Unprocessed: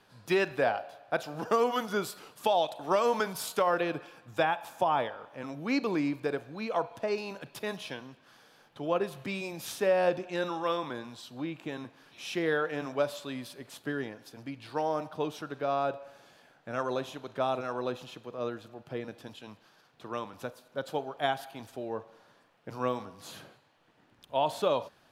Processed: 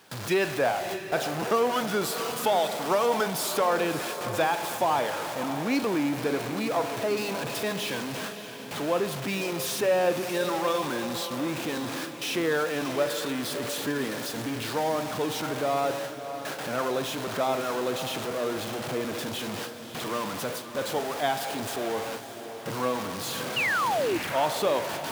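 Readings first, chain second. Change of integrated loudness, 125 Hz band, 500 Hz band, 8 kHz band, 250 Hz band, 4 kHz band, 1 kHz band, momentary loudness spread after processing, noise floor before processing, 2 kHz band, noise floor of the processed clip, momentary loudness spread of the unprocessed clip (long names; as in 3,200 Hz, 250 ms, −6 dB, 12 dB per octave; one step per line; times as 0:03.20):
+4.0 dB, +5.5 dB, +4.0 dB, +12.5 dB, +5.0 dB, +8.5 dB, +4.0 dB, 7 LU, −64 dBFS, +6.0 dB, −39 dBFS, 16 LU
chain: converter with a step at zero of −29 dBFS
high-pass filter 110 Hz 12 dB per octave
sound drawn into the spectrogram fall, 0:23.56–0:24.18, 310–3,000 Hz −26 dBFS
noise gate with hold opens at −29 dBFS
on a send: feedback delay with all-pass diffusion 614 ms, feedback 48%, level −10 dB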